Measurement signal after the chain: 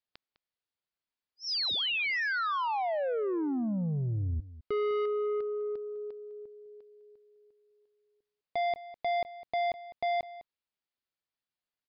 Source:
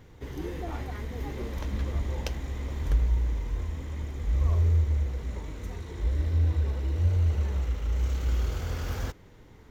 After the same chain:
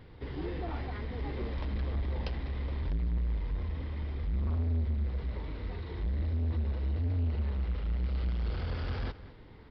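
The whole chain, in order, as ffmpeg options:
-filter_complex "[0:a]aresample=11025,asoftclip=type=tanh:threshold=-28dB,aresample=44100,asplit=2[a][b];[b]adelay=204.1,volume=-16dB,highshelf=f=4k:g=-4.59[c];[a][c]amix=inputs=2:normalize=0"

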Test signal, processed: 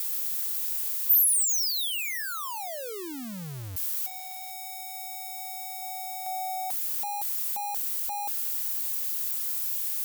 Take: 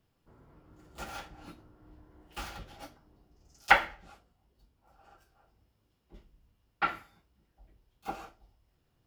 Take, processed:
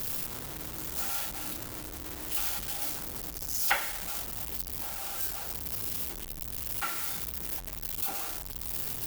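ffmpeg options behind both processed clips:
-af "aeval=exprs='val(0)+0.5*0.0376*sgn(val(0))':c=same,aemphasis=mode=production:type=75fm,volume=-9dB"

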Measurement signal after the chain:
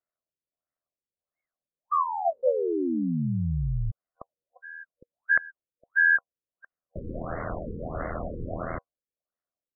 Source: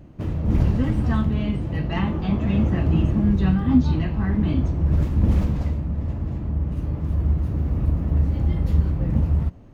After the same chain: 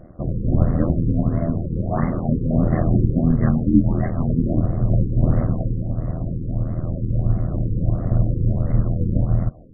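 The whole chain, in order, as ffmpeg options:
-af "superequalizer=8b=2.51:9b=0.631:10b=1.58,aeval=exprs='val(0)*sin(2*PI*41*n/s)':c=same,afftfilt=real='re*lt(b*sr/1024,500*pow(2200/500,0.5+0.5*sin(2*PI*1.5*pts/sr)))':imag='im*lt(b*sr/1024,500*pow(2200/500,0.5+0.5*sin(2*PI*1.5*pts/sr)))':win_size=1024:overlap=0.75,volume=4.5dB"

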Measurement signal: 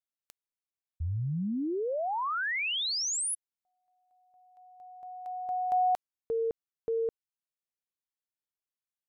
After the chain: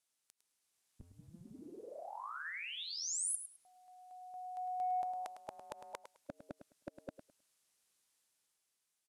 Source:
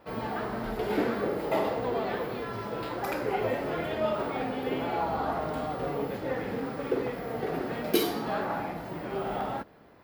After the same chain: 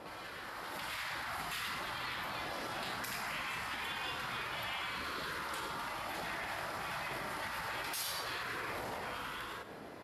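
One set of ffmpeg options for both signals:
-af "afftfilt=real='re*lt(hypot(re,im),0.0501)':imag='im*lt(hypot(re,im),0.0501)':win_size=1024:overlap=0.75,acompressor=threshold=-47dB:ratio=10:attack=0.18:release=105:knee=1:detection=rms,aemphasis=mode=production:type=cd,asoftclip=type=tanh:threshold=-38.5dB,lowpass=f=11k:w=0.5412,lowpass=f=11k:w=1.3066,dynaudnorm=f=120:g=13:m=6dB,lowshelf=f=77:g=-10.5,aecho=1:1:105|210|315:0.299|0.0597|0.0119,volume=7.5dB"

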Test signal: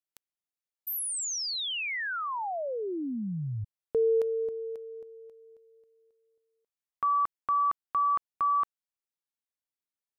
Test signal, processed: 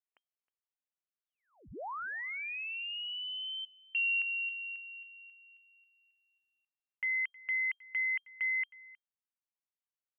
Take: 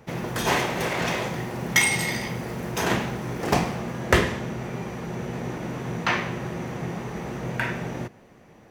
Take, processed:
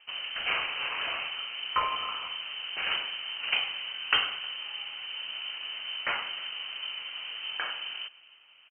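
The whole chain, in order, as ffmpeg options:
-filter_complex "[0:a]asplit=2[a][b];[b]adelay=314.9,volume=-21dB,highshelf=f=4k:g=-7.08[c];[a][c]amix=inputs=2:normalize=0,lowpass=f=2.7k:t=q:w=0.5098,lowpass=f=2.7k:t=q:w=0.6013,lowpass=f=2.7k:t=q:w=0.9,lowpass=f=2.7k:t=q:w=2.563,afreqshift=-3200,volume=-6.5dB"

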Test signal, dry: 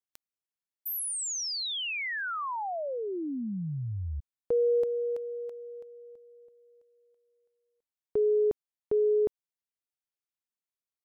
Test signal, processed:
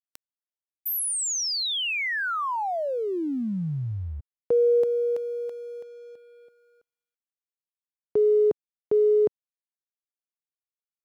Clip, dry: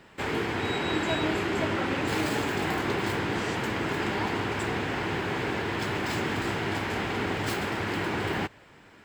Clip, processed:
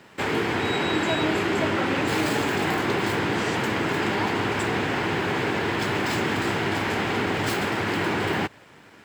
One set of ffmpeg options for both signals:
-filter_complex "[0:a]highpass=94,asplit=2[a][b];[b]alimiter=limit=-23dB:level=0:latency=1,volume=0dB[c];[a][c]amix=inputs=2:normalize=0,aeval=exprs='sgn(val(0))*max(abs(val(0))-0.00133,0)':c=same"

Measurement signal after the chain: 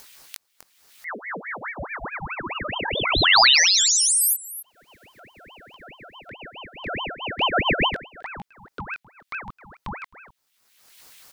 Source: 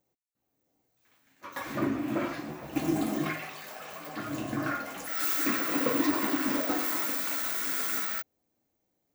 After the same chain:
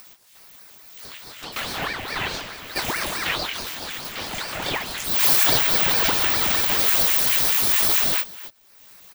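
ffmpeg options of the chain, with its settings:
-af "highshelf=f=6.9k:g=-7,aecho=1:1:263:0.1,flanger=delay=18.5:depth=6.7:speed=0.36,acompressor=mode=upward:threshold=-43dB:ratio=2.5,equalizer=f=2.8k:w=1.1:g=12,crystalizer=i=6:c=0,aeval=exprs='val(0)*sin(2*PI*1200*n/s+1200*0.75/4.7*sin(2*PI*4.7*n/s))':c=same,volume=4dB"

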